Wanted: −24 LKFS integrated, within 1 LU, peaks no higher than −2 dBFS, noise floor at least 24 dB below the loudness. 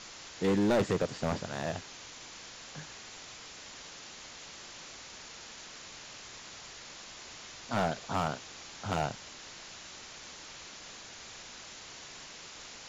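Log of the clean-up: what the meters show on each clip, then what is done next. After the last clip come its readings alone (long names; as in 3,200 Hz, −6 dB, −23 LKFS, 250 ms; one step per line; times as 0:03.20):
share of clipped samples 0.7%; peaks flattened at −22.5 dBFS; background noise floor −49 dBFS; target noise floor −62 dBFS; integrated loudness −37.5 LKFS; sample peak −22.5 dBFS; target loudness −24.0 LKFS
→ clipped peaks rebuilt −22.5 dBFS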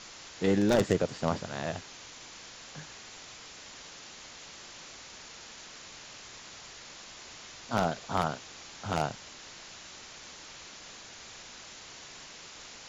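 share of clipped samples 0.0%; background noise floor −49 dBFS; target noise floor −60 dBFS
→ broadband denoise 11 dB, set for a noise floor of −49 dBFS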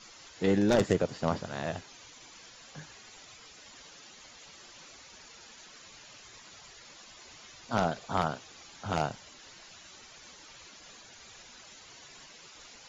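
background noise floor −53 dBFS; target noise floor −55 dBFS
→ broadband denoise 6 dB, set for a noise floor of −53 dBFS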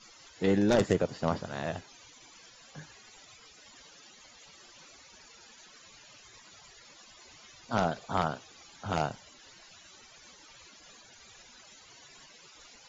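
background noise floor −56 dBFS; integrated loudness −31.0 LKFS; sample peak −13.0 dBFS; target loudness −24.0 LKFS
→ level +7 dB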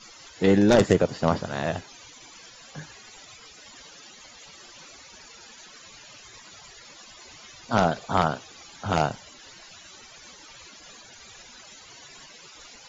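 integrated loudness −24.0 LKFS; sample peak −6.0 dBFS; background noise floor −49 dBFS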